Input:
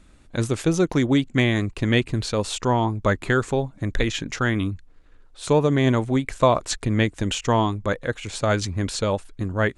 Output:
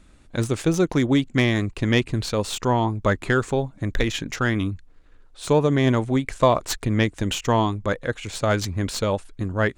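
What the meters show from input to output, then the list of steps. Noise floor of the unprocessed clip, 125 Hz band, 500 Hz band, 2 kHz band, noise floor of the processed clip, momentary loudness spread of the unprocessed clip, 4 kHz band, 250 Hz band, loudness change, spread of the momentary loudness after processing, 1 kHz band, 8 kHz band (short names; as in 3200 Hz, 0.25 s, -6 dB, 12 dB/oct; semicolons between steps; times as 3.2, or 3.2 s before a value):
-51 dBFS, 0.0 dB, 0.0 dB, 0.0 dB, -51 dBFS, 8 LU, 0.0 dB, 0.0 dB, 0.0 dB, 8 LU, 0.0 dB, -0.5 dB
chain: tracing distortion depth 0.034 ms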